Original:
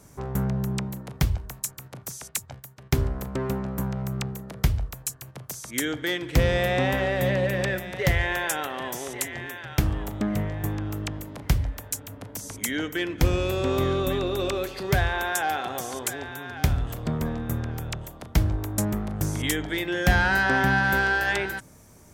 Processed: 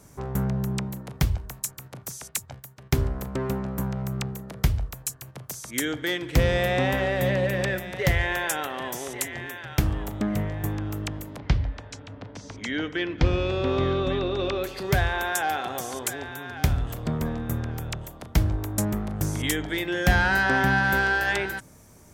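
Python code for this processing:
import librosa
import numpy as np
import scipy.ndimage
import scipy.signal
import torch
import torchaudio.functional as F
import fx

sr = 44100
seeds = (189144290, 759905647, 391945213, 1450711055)

y = fx.lowpass(x, sr, hz=4900.0, slope=24, at=(11.38, 14.64))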